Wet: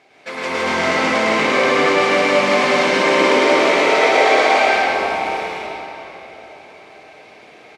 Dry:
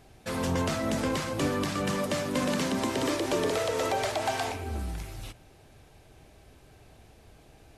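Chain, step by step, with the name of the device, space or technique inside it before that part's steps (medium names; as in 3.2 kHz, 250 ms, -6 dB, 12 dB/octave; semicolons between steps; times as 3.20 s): station announcement (band-pass 400–4900 Hz; peaking EQ 2.2 kHz +11 dB 0.24 oct; loudspeakers at several distances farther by 36 m -2 dB, 55 m -3 dB; reverberation RT60 3.8 s, pre-delay 119 ms, DRR -7 dB); trim +5 dB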